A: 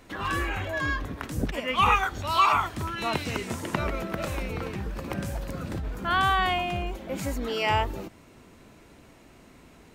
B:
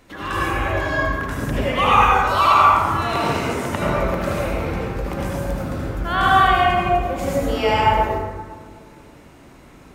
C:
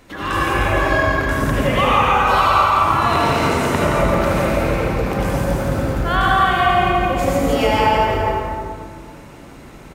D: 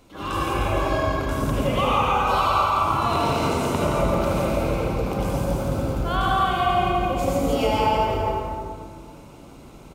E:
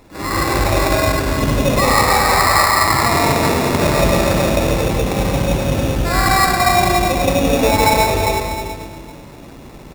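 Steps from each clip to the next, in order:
reverb RT60 1.8 s, pre-delay 68 ms, DRR -6 dB; dynamic EQ 600 Hz, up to +5 dB, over -31 dBFS, Q 1.5
compressor 4:1, threshold -18 dBFS, peak gain reduction 8.5 dB; bouncing-ball echo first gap 0.17 s, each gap 0.8×, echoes 5; gain +4 dB
bell 1800 Hz -14.5 dB 0.38 oct; attack slew limiter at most 200 dB/s; gain -4.5 dB
sample-rate reducer 3100 Hz, jitter 0%; gain +7 dB

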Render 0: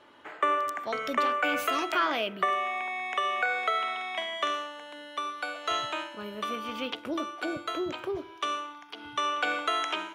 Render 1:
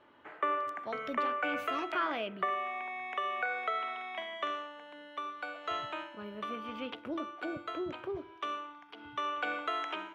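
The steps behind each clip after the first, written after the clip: tone controls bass +3 dB, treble -14 dB; gain -5.5 dB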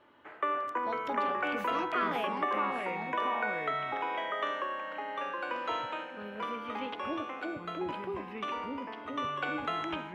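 echoes that change speed 0.246 s, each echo -3 st, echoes 2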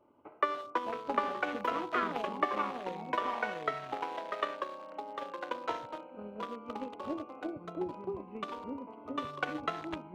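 Wiener smoothing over 25 samples; transient shaper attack +7 dB, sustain -3 dB; gain -2 dB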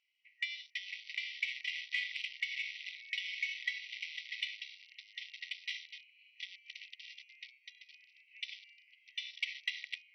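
FFT band-pass 1900–6000 Hz; in parallel at -10.5 dB: soft clip -38 dBFS, distortion -13 dB; on the sum: gain +6.5 dB

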